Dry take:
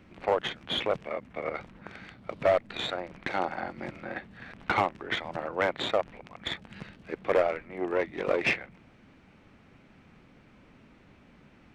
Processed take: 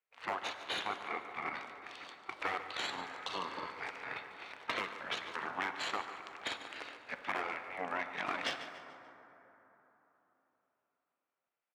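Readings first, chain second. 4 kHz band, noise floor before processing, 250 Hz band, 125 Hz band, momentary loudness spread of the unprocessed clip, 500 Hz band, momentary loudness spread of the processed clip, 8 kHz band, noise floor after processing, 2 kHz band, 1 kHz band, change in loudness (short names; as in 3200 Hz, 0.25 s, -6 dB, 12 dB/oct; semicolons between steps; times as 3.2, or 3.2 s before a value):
-5.5 dB, -58 dBFS, -12.0 dB, -16.0 dB, 16 LU, -17.0 dB, 10 LU, n/a, under -85 dBFS, -5.0 dB, -6.0 dB, -9.0 dB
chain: gate -49 dBFS, range -36 dB; spectral gate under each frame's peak -10 dB weak; HPF 590 Hz 6 dB/oct; spectral repair 2.93–3.66, 1200–2600 Hz after; compressor 4:1, threshold -38 dBFS, peak gain reduction 9 dB; on a send: feedback echo 0.145 s, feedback 44%, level -14.5 dB; on the sum: plate-style reverb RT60 3.9 s, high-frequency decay 0.35×, DRR 9 dB; gain +4 dB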